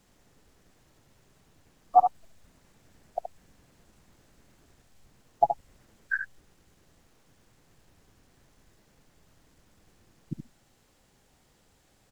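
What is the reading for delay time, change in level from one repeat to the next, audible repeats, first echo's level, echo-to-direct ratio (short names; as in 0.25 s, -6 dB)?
73 ms, no steady repeat, 1, -7.5 dB, -7.5 dB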